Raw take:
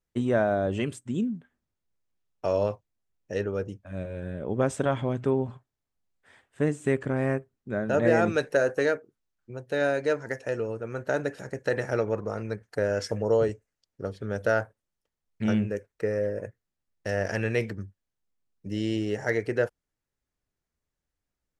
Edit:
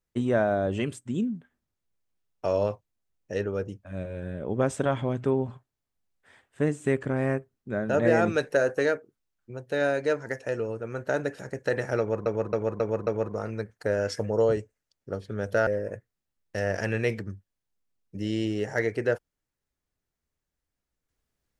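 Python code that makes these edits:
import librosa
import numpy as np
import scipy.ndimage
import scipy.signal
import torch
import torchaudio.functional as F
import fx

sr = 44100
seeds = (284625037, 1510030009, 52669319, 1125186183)

y = fx.edit(x, sr, fx.repeat(start_s=11.99, length_s=0.27, count=5),
    fx.cut(start_s=14.59, length_s=1.59), tone=tone)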